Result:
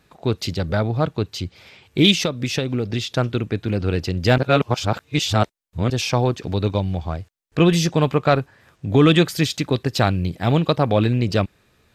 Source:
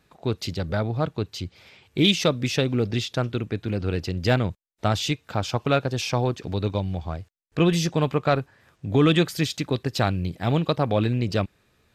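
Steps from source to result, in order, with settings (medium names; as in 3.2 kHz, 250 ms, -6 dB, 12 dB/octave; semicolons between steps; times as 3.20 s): 2.19–3.15 s: compression 10:1, threshold -23 dBFS, peak gain reduction 8.5 dB; 4.38–5.90 s: reverse; trim +4.5 dB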